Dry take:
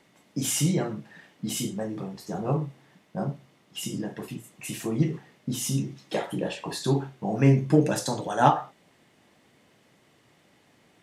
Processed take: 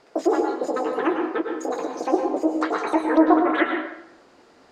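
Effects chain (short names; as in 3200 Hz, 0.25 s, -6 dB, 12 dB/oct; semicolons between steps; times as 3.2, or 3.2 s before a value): LPF 2700 Hz 12 dB/oct; speed mistake 33 rpm record played at 78 rpm; treble ducked by the level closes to 1400 Hz, closed at -19.5 dBFS; in parallel at -0.5 dB: compressor, threshold -31 dBFS, peak gain reduction 15.5 dB; on the sum: tilt -2 dB/oct; plate-style reverb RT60 0.76 s, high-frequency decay 0.8×, pre-delay 90 ms, DRR 3 dB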